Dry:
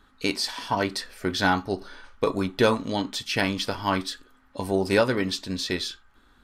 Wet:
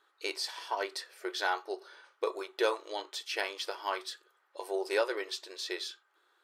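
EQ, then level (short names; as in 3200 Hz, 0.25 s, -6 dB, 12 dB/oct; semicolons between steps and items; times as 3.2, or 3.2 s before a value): brick-wall FIR high-pass 320 Hz; -8.0 dB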